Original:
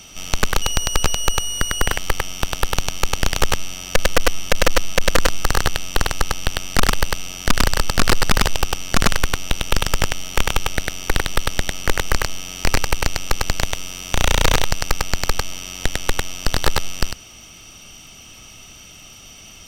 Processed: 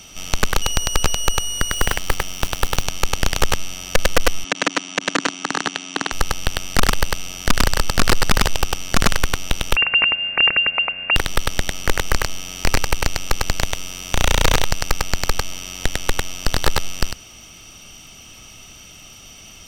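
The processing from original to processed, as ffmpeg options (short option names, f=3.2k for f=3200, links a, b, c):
-filter_complex "[0:a]asettb=1/sr,asplit=3[a][b][c];[a]atrim=end=1.724[d];[b]atrim=start=1.72:end=2.88,asetpts=PTS-STARTPTS,afade=t=in:d=0.004:c=qsin,afade=t=out:st=1.156:d=0.004:c=qsin,acrusher=bits=6:dc=4:mix=0:aa=0.000001[e];[c]atrim=start=2.876[f];[d][e]acrossfade=d=0.004:c1=hsin:c2=qsin[g];[g][f]acrossfade=d=0.004:c1=qsin:c2=hsin,asettb=1/sr,asplit=3[h][i][j];[h]atrim=end=4.444[k];[i]atrim=start=4.44:end=6.12,asetpts=PTS-STARTPTS,afade=t=in:d=0.004:c=qsin,afade=t=out:st=1.676:d=0.004:c=qsin,highpass=f=190:w=0.5412,highpass=f=190:w=1.3066,equalizer=f=280:t=q:w=4:g=8,equalizer=f=520:t=q:w=4:g=-10,equalizer=f=5k:t=q:w=4:g=-5,lowpass=f=7.2k:w=0.5412,lowpass=f=7.2k:w=1.3066[l];[j]atrim=start=6.116[m];[k][l]acrossfade=d=0.004:c1=hsin:c2=qsin[n];[n][m]acrossfade=d=0.004:c1=qsin:c2=hsin,asettb=1/sr,asplit=3[o][p][q];[o]atrim=end=9.764[r];[p]atrim=start=9.76:end=11.16,asetpts=PTS-STARTPTS,afade=t=in:d=0.004:c=qsin,afade=t=out:st=1.396:d=0.004:c=qsin,lowpass=f=2.4k:t=q:w=0.5098,lowpass=f=2.4k:t=q:w=0.6013,lowpass=f=2.4k:t=q:w=0.9,lowpass=f=2.4k:t=q:w=2.563,afreqshift=-2800[s];[q]atrim=start=11.156[t];[r][s]acrossfade=d=0.004:c1=hsin:c2=qsin[u];[u][t]acrossfade=d=0.004:c1=qsin:c2=hsin"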